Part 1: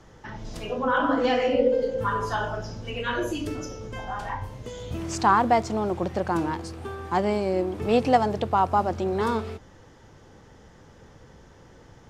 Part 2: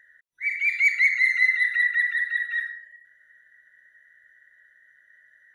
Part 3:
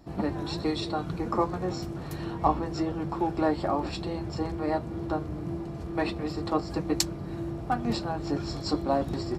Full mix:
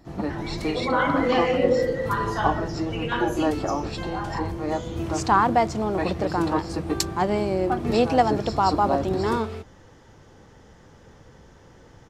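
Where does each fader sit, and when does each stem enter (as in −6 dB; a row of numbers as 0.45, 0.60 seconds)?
+0.5, −18.0, +1.0 decibels; 0.05, 0.00, 0.00 seconds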